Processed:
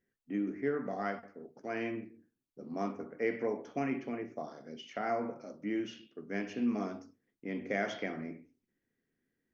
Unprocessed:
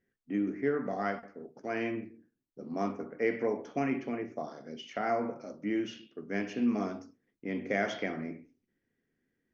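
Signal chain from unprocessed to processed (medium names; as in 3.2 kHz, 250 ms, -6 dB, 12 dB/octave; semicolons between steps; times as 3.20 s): hum notches 50/100 Hz; trim -3 dB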